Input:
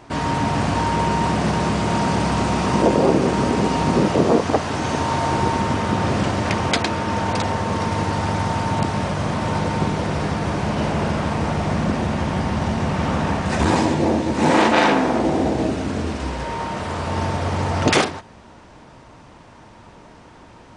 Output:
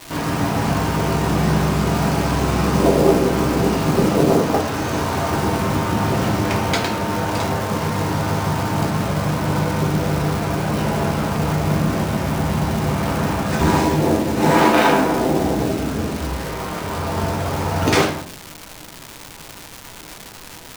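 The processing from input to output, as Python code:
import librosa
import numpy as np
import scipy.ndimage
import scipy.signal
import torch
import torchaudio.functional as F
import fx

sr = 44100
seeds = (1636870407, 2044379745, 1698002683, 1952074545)

y = fx.quant_float(x, sr, bits=2)
y = fx.room_shoebox(y, sr, seeds[0], volume_m3=51.0, walls='mixed', distance_m=0.68)
y = fx.dmg_crackle(y, sr, seeds[1], per_s=530.0, level_db=-20.0)
y = y * librosa.db_to_amplitude(-3.0)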